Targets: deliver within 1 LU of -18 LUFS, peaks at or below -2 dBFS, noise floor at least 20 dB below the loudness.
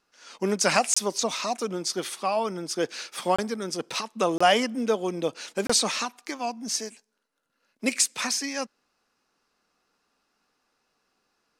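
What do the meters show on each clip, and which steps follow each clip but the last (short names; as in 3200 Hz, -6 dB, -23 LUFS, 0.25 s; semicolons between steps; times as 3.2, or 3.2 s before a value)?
dropouts 4; longest dropout 25 ms; loudness -26.5 LUFS; peak -7.5 dBFS; loudness target -18.0 LUFS
-> interpolate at 0.94/3.36/4.38/5.67, 25 ms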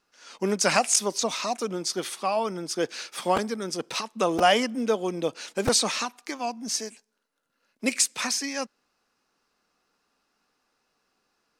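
dropouts 0; loudness -26.0 LUFS; peak -7.0 dBFS; loudness target -18.0 LUFS
-> gain +8 dB; limiter -2 dBFS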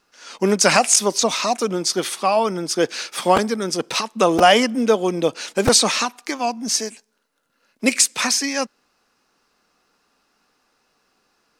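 loudness -18.5 LUFS; peak -2.0 dBFS; noise floor -68 dBFS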